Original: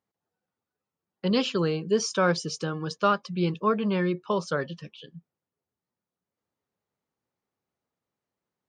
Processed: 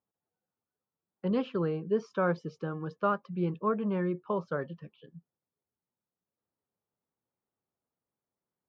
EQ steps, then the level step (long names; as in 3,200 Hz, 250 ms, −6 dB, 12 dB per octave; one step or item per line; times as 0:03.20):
low-pass filter 1,500 Hz 12 dB per octave
−4.5 dB